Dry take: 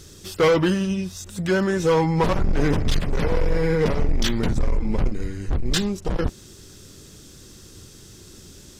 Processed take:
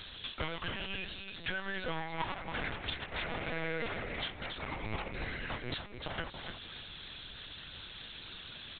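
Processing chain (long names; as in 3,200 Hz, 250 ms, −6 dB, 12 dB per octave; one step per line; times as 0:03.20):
stylus tracing distortion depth 0.045 ms
high-pass filter 1,200 Hz 6 dB per octave
spectral tilt +2.5 dB per octave
downward compressor 20 to 1, threshold −41 dBFS, peak gain reduction 27.5 dB
repeating echo 287 ms, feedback 19%, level −7 dB
linear-prediction vocoder at 8 kHz pitch kept
level +8.5 dB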